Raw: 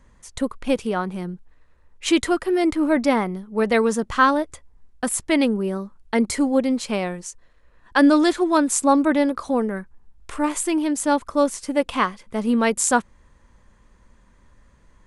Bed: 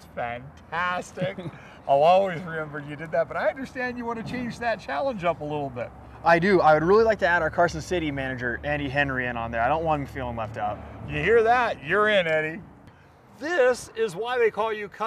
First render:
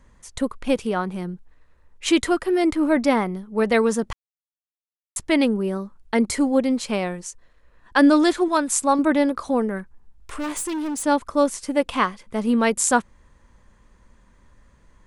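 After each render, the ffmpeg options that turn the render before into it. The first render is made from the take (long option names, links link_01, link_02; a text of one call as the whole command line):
ffmpeg -i in.wav -filter_complex "[0:a]asettb=1/sr,asplit=3[link_01][link_02][link_03];[link_01]atrim=end=8.484[link_04];[link_02]atrim=start=8.48:end=8.99,asetpts=PTS-STARTPTS,afade=type=in:duration=0.004:curve=qsin,afade=type=out:start_time=0.506:duration=0.004:curve=qsin,equalizer=frequency=320:width_type=o:width=1.4:gain=-6[link_05];[link_03]atrim=start=8.986[link_06];[link_04][link_05]acrossfade=duration=0.004:curve1=hsin:curve2=qsin[link_07];[link_07][link_06]acrossfade=duration=0.004:curve1=qsin:curve2=hsin,asplit=3[link_08][link_09][link_10];[link_08]afade=type=out:start_time=9.78:duration=0.02[link_11];[link_09]asoftclip=type=hard:threshold=-24.5dB,afade=type=in:start_time=9.78:duration=0.02,afade=type=out:start_time=11.02:duration=0.02[link_12];[link_10]afade=type=in:start_time=11.02:duration=0.02[link_13];[link_11][link_12][link_13]amix=inputs=3:normalize=0,asplit=3[link_14][link_15][link_16];[link_14]atrim=end=4.13,asetpts=PTS-STARTPTS,afade=type=out:start_time=4.126:duration=0.004:curve=hsin[link_17];[link_15]atrim=start=4.13:end=5.16,asetpts=PTS-STARTPTS,volume=0[link_18];[link_16]atrim=start=5.16,asetpts=PTS-STARTPTS,afade=type=in:duration=0.004:curve=hsin[link_19];[link_17][link_18][link_19]concat=n=3:v=0:a=1" out.wav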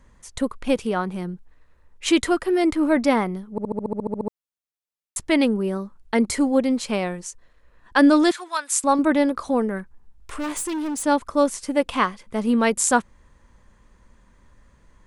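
ffmpeg -i in.wav -filter_complex "[0:a]asettb=1/sr,asplit=3[link_01][link_02][link_03];[link_01]atrim=end=8.314[link_04];[link_02]atrim=start=8.31:end=8.84,asetpts=PTS-STARTPTS,afade=type=in:duration=0.004:curve=qsin,afade=type=out:start_time=0.526:duration=0.004:curve=qsin,highpass=1200[link_05];[link_03]atrim=start=8.836[link_06];[link_04][link_05]acrossfade=duration=0.004:curve1=hsin:curve2=qsin[link_07];[link_07][link_06]acrossfade=duration=0.004:curve1=qsin:curve2=hsin,asplit=12[link_08][link_09][link_10][link_11][link_12][link_13][link_14][link_15][link_16][link_17][link_18][link_19];[link_08]atrim=end=3.582[link_20];[link_09]atrim=start=3.508:end=3.582[link_21];[link_10]atrim=start=3.508:end=3.582[link_22];[link_11]atrim=start=3.508:end=3.582[link_23];[link_12]atrim=start=3.508:end=3.582[link_24];[link_13]atrim=start=3.508:end=3.582[link_25];[link_14]atrim=start=3.508:end=3.582[link_26];[link_15]atrim=start=3.508:end=3.582[link_27];[link_16]atrim=start=3.508:end=3.582[link_28];[link_17]atrim=start=3.508:end=3.582[link_29];[link_18]atrim=start=3.508:end=3.582[link_30];[link_19]atrim=start=4.278[link_31];[link_20][link_21]acrossfade=duration=0.004:curve1=hsin:curve2=hsin[link_32];[link_32][link_22]acrossfade=duration=0.004:curve1=hsin:curve2=hsin[link_33];[link_33][link_23]acrossfade=duration=0.004:curve1=hsin:curve2=hsin[link_34];[link_34][link_24]acrossfade=duration=0.004:curve1=hsin:curve2=hsin[link_35];[link_35][link_25]acrossfade=duration=0.004:curve1=hsin:curve2=hsin[link_36];[link_36][link_26]acrossfade=duration=0.004:curve1=hsin:curve2=hsin[link_37];[link_37][link_27]acrossfade=duration=0.004:curve1=hsin:curve2=hsin[link_38];[link_38][link_28]acrossfade=duration=0.004:curve1=hsin:curve2=hsin[link_39];[link_39][link_29]acrossfade=duration=0.004:curve1=hsin:curve2=hsin[link_40];[link_40][link_30]acrossfade=duration=0.004:curve1=hsin:curve2=hsin[link_41];[link_41][link_31]acrossfade=duration=0.004:curve1=hsin:curve2=hsin" out.wav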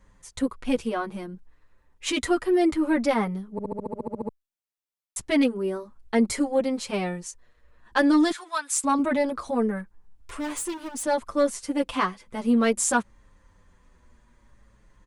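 ffmpeg -i in.wav -filter_complex "[0:a]asoftclip=type=tanh:threshold=-7.5dB,asplit=2[link_01][link_02];[link_02]adelay=7.2,afreqshift=-0.6[link_03];[link_01][link_03]amix=inputs=2:normalize=1" out.wav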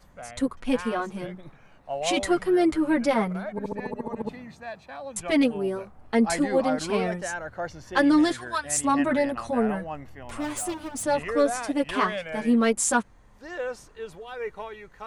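ffmpeg -i in.wav -i bed.wav -filter_complex "[1:a]volume=-11.5dB[link_01];[0:a][link_01]amix=inputs=2:normalize=0" out.wav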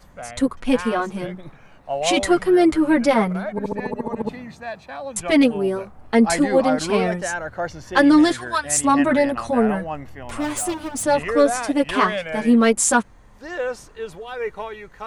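ffmpeg -i in.wav -af "volume=6dB,alimiter=limit=-3dB:level=0:latency=1" out.wav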